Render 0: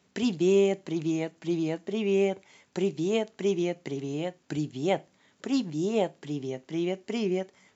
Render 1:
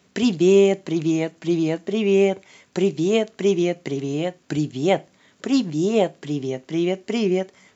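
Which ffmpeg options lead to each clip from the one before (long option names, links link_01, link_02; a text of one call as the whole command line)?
ffmpeg -i in.wav -af "bandreject=frequency=860:width=12,volume=7.5dB" out.wav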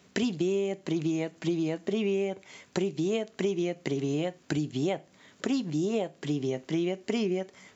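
ffmpeg -i in.wav -af "acompressor=threshold=-25dB:ratio=12" out.wav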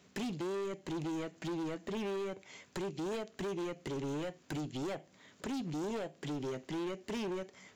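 ffmpeg -i in.wav -af "volume=31dB,asoftclip=hard,volume=-31dB,volume=-4dB" out.wav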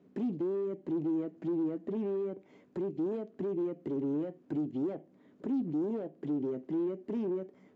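ffmpeg -i in.wav -af "bandpass=frequency=290:width_type=q:width=1.7:csg=0,volume=7.5dB" out.wav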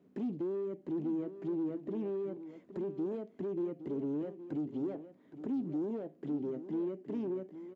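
ffmpeg -i in.wav -af "aecho=1:1:817:0.237,volume=-3dB" out.wav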